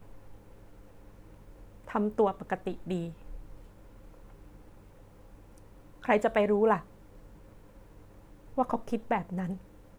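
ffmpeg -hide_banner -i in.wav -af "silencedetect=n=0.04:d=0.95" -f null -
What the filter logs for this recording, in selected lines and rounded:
silence_start: 0.00
silence_end: 1.95 | silence_duration: 1.95
silence_start: 3.04
silence_end: 6.05 | silence_duration: 3.01
silence_start: 6.77
silence_end: 8.58 | silence_duration: 1.81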